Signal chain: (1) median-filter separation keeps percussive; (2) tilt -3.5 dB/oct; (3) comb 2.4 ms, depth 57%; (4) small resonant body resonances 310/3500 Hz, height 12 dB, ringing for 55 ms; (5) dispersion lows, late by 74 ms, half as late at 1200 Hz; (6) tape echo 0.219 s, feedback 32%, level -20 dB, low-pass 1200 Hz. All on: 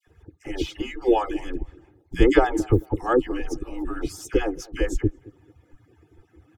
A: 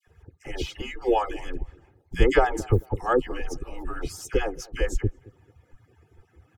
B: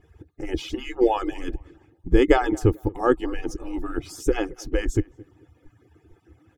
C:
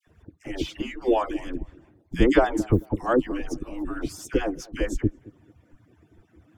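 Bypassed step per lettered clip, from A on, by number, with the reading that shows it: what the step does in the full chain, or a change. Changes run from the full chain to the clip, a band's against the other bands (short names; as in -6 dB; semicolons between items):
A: 4, 250 Hz band -7.0 dB; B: 5, crest factor change +1.5 dB; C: 3, loudness change -1.5 LU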